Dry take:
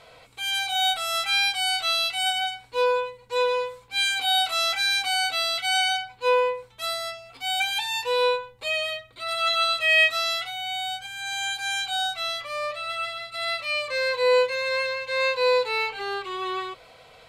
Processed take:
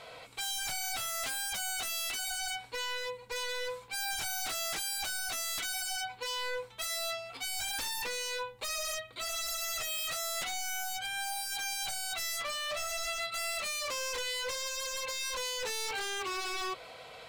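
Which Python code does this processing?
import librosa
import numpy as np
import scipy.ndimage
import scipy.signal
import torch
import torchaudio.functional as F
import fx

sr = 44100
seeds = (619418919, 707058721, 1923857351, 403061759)

p1 = fx.low_shelf(x, sr, hz=120.0, db=-8.5)
p2 = fx.over_compress(p1, sr, threshold_db=-30.0, ratio=-0.5)
p3 = p1 + F.gain(torch.from_numpy(p2), -3.0).numpy()
p4 = 10.0 ** (-26.0 / 20.0) * (np.abs((p3 / 10.0 ** (-26.0 / 20.0) + 3.0) % 4.0 - 2.0) - 1.0)
y = F.gain(torch.from_numpy(p4), -5.0).numpy()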